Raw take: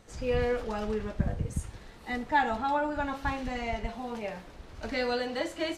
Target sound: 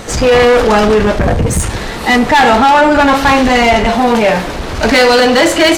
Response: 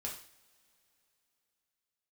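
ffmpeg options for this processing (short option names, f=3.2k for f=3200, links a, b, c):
-af "apsyclip=29.5dB,acontrast=53,lowshelf=f=140:g=-6.5,volume=-4dB"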